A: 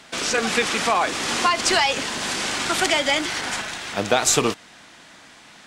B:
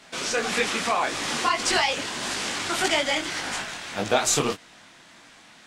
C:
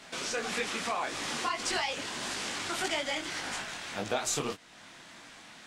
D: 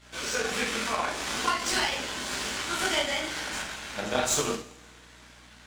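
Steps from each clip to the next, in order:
detune thickener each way 59 cents
compression 1.5:1, threshold -45 dBFS, peak gain reduction 10.5 dB
two-slope reverb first 0.5 s, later 2 s, from -17 dB, DRR -5.5 dB; hum 60 Hz, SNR 20 dB; power-law waveshaper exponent 1.4; trim +1.5 dB

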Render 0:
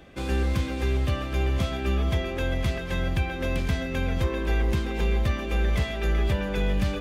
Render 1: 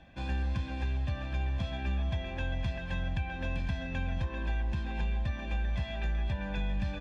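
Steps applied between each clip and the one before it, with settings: low-pass 4.5 kHz 12 dB/octave; comb 1.2 ms, depth 74%; compression, threshold -20 dBFS, peak gain reduction 5.5 dB; trim -8 dB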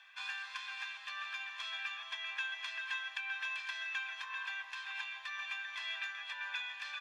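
Chebyshev high-pass 1.1 kHz, order 4; trim +5 dB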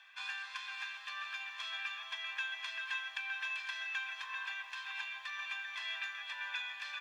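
bit-crushed delay 562 ms, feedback 55%, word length 11-bit, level -14.5 dB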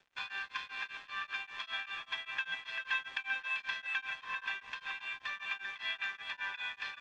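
crossover distortion -55.5 dBFS; distance through air 150 m; tremolo of two beating tones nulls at 5.1 Hz; trim +8 dB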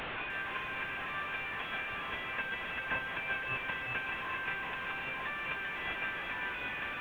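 one-bit delta coder 16 kbps, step -32.5 dBFS; bit-crushed delay 304 ms, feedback 35%, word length 9-bit, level -14.5 dB

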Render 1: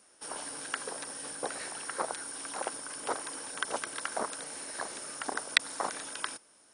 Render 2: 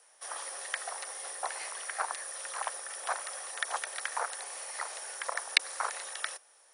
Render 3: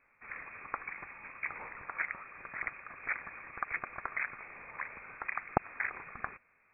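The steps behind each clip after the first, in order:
frequency shift +260 Hz
frequency inversion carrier 3 kHz; trim -1.5 dB

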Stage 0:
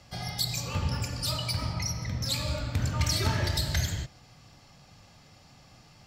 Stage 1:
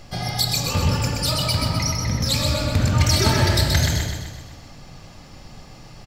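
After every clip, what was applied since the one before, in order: peaking EQ 320 Hz +4 dB 2.3 oct; added noise brown -54 dBFS; on a send: feedback delay 127 ms, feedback 53%, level -4.5 dB; on the sum: trim +7.5 dB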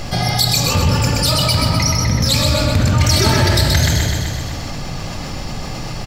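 level flattener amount 50%; trim +2.5 dB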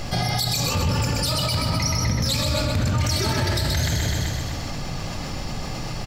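peak limiter -9.5 dBFS, peak gain reduction 8 dB; trim -4 dB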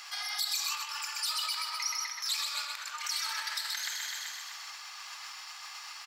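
steep high-pass 1 kHz 36 dB/octave; trim -7 dB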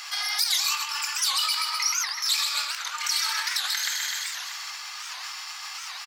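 bass shelf 460 Hz -9.5 dB; doubling 21 ms -11.5 dB; warped record 78 rpm, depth 250 cents; trim +8 dB

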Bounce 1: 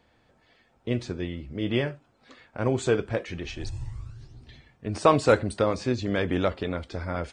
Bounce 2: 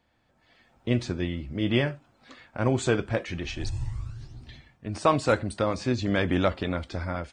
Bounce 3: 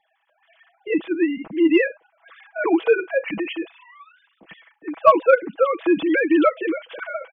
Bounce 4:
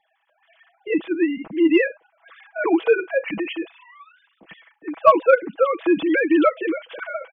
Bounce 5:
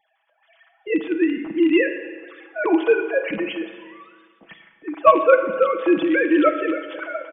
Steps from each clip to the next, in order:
level rider gain up to 10 dB; peaking EQ 440 Hz -6 dB 0.39 oct; trim -6 dB
formants replaced by sine waves; comb 6.1 ms, depth 73%; in parallel at -9.5 dB: saturation -13 dBFS, distortion -15 dB; on the sum: trim +2.5 dB
no audible change
rattle on loud lows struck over -29 dBFS, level -24 dBFS; spring tank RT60 1.6 s, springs 31/43 ms, chirp 60 ms, DRR 8 dB; resampled via 8 kHz

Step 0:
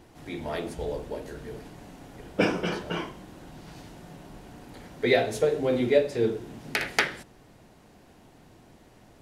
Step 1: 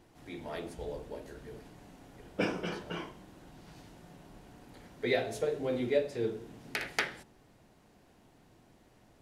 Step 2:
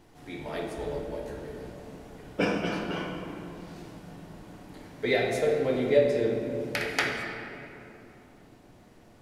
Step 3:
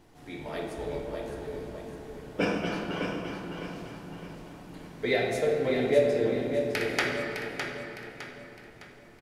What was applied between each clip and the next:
de-hum 76.57 Hz, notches 12; trim -7.5 dB
simulated room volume 120 m³, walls hard, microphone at 0.36 m; trim +3.5 dB
feedback delay 609 ms, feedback 40%, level -7 dB; trim -1 dB

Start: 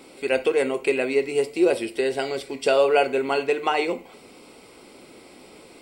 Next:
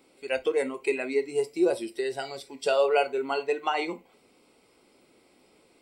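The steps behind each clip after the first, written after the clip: spectral noise reduction 10 dB; trim -4 dB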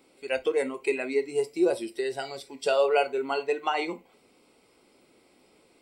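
no audible change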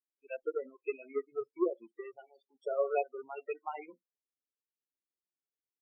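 power-law waveshaper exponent 2; loudest bins only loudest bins 8

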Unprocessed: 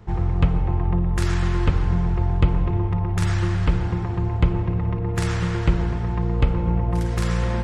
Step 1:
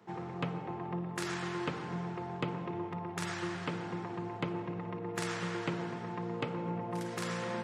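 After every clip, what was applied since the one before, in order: Bessel high-pass 240 Hz, order 8; trim -7 dB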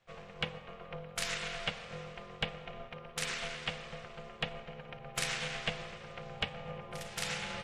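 FFT filter 1.3 kHz 0 dB, 2.5 kHz +14 dB, 4.8 kHz +10 dB; ring modulator 330 Hz; upward expansion 1.5:1, over -54 dBFS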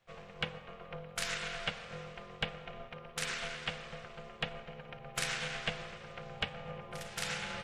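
dynamic bell 1.5 kHz, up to +4 dB, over -57 dBFS, Q 4.3; trim -1 dB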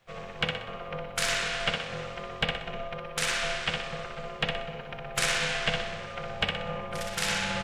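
in parallel at -12 dB: saturation -31 dBFS, distortion -10 dB; on the sum: feedback delay 62 ms, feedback 43%, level -4 dB; trim +6 dB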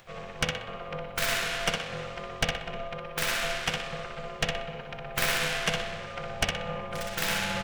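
tracing distortion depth 0.22 ms; upward compressor, threshold -47 dBFS

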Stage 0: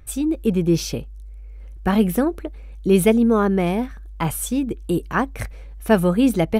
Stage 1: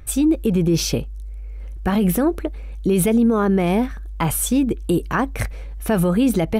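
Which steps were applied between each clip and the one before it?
peak limiter -15.5 dBFS, peak gain reduction 11 dB; trim +5.5 dB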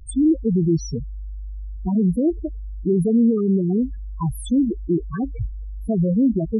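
loudest bins only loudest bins 4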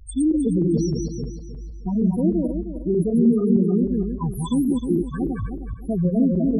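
backward echo that repeats 155 ms, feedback 54%, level -2 dB; trim -3 dB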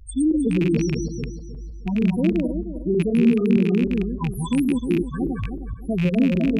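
rattle on loud lows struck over -20 dBFS, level -21 dBFS

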